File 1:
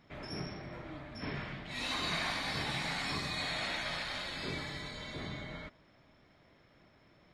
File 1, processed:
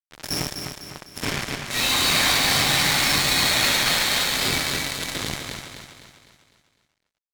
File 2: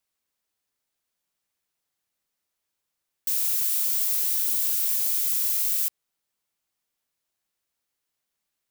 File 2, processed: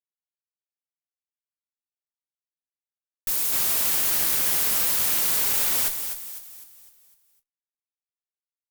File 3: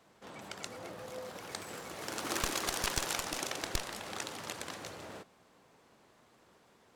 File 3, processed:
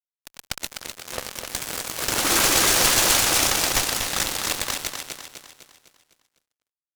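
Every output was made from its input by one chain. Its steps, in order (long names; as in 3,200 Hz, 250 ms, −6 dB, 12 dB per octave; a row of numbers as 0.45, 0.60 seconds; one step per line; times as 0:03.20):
high-shelf EQ 2,600 Hz +9 dB
downward compressor 10 to 1, threshold −19 dBFS
coupled-rooms reverb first 0.29 s, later 2.3 s, DRR 12.5 dB
fuzz pedal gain 37 dB, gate −37 dBFS
on a send: repeating echo 252 ms, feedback 46%, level −6 dB
on the sum: harmonic generator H 3 −11 dB, 4 −17 dB, 5 −27 dB, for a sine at −0.5 dBFS
loudness normalisation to −20 LKFS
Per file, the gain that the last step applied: +4.5, −0.5, +7.0 decibels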